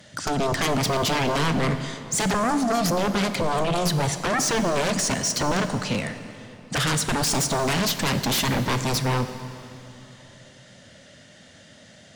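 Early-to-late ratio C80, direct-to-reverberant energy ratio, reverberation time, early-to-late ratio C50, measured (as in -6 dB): 10.5 dB, 8.5 dB, 2.9 s, 9.5 dB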